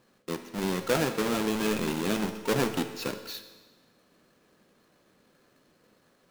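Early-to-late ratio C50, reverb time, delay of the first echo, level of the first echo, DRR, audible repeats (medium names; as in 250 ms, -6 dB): 10.0 dB, 1.3 s, no echo, no echo, 8.0 dB, no echo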